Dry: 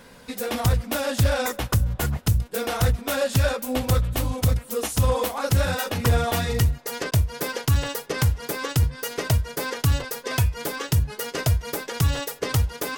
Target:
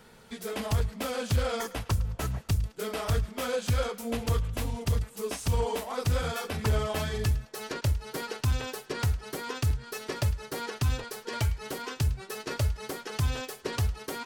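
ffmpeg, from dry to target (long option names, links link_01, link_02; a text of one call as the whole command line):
ffmpeg -i in.wav -filter_complex "[0:a]asetrate=40131,aresample=44100,acrossover=split=880|7300[link_01][link_02][link_03];[link_02]aecho=1:1:107|214|321:0.133|0.052|0.0203[link_04];[link_03]asoftclip=type=tanh:threshold=-35.5dB[link_05];[link_01][link_04][link_05]amix=inputs=3:normalize=0,volume=-6.5dB" out.wav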